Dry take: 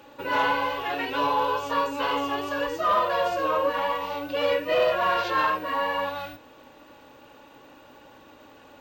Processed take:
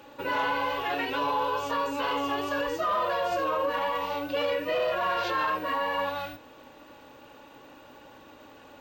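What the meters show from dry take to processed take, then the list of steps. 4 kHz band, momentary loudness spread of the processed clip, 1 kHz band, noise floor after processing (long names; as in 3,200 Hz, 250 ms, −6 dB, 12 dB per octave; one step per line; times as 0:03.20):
−2.5 dB, 3 LU, −3.0 dB, −51 dBFS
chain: brickwall limiter −20 dBFS, peak gain reduction 6.5 dB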